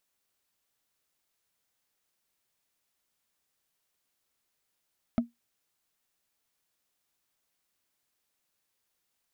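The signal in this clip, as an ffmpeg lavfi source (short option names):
-f lavfi -i "aevalsrc='0.126*pow(10,-3*t/0.16)*sin(2*PI*236*t)+0.0562*pow(10,-3*t/0.047)*sin(2*PI*650.7*t)+0.0251*pow(10,-3*t/0.021)*sin(2*PI*1275.3*t)+0.0112*pow(10,-3*t/0.012)*sin(2*PI*2108.2*t)+0.00501*pow(10,-3*t/0.007)*sin(2*PI*3148.2*t)':d=0.45:s=44100"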